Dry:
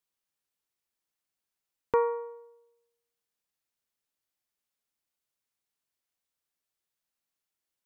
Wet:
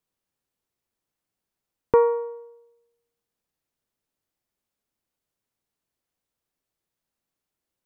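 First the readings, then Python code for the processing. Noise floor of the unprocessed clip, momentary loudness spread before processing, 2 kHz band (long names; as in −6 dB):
below −85 dBFS, 13 LU, +2.5 dB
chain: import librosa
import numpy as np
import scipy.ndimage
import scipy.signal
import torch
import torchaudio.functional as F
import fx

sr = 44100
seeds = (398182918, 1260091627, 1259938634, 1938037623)

y = fx.tilt_shelf(x, sr, db=5.5, hz=840.0)
y = y * librosa.db_to_amplitude(5.5)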